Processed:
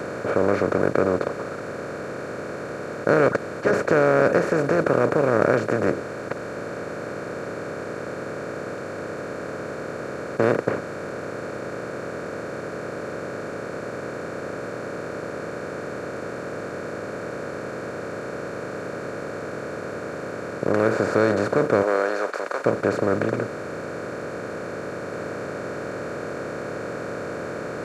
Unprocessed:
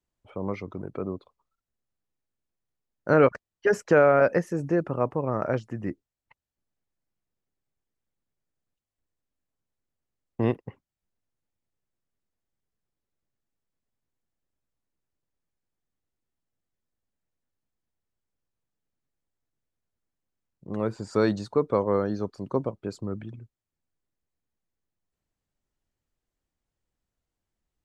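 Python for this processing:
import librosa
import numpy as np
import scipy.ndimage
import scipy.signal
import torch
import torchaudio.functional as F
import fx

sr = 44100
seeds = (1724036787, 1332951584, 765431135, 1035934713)

y = fx.bin_compress(x, sr, power=0.2)
y = fx.highpass(y, sr, hz=fx.line((21.82, 370.0), (22.64, 870.0)), slope=12, at=(21.82, 22.64), fade=0.02)
y = F.gain(torch.from_numpy(y), -4.5).numpy()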